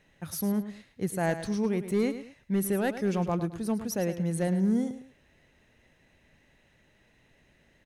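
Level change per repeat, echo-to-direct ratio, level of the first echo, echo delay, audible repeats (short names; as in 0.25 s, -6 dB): -10.0 dB, -11.0 dB, -11.5 dB, 0.107 s, 2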